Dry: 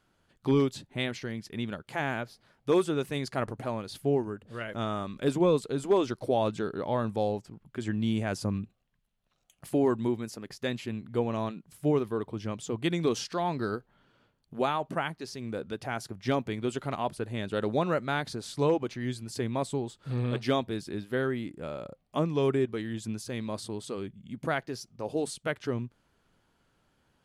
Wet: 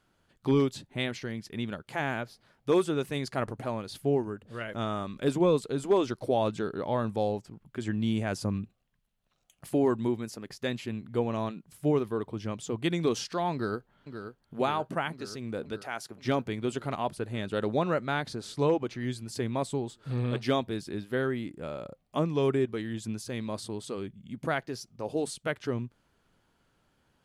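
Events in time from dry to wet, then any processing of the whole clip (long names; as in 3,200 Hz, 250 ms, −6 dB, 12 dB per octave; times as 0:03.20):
0:13.53–0:14.59: delay throw 530 ms, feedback 75%, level −9 dB
0:15.81–0:16.21: high-pass filter 940 Hz → 310 Hz 6 dB per octave
0:17.66–0:18.96: high-shelf EQ 8,000 Hz −5 dB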